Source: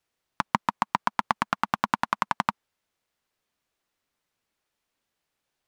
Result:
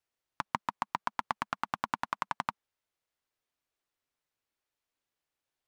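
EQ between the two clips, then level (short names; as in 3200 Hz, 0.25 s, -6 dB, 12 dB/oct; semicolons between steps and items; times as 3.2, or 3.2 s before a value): bell 200 Hz -9 dB 0.3 oct; -8.0 dB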